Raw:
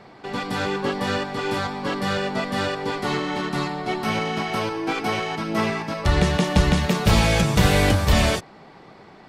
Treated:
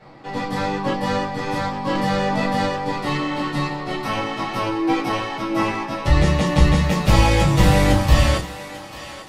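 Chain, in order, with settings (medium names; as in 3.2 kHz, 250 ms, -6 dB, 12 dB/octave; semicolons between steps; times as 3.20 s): thinning echo 844 ms, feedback 45%, high-pass 590 Hz, level -13 dB; reverberation RT60 0.20 s, pre-delay 6 ms, DRR -8 dB; 1.95–2.66 s: level flattener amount 70%; trim -7.5 dB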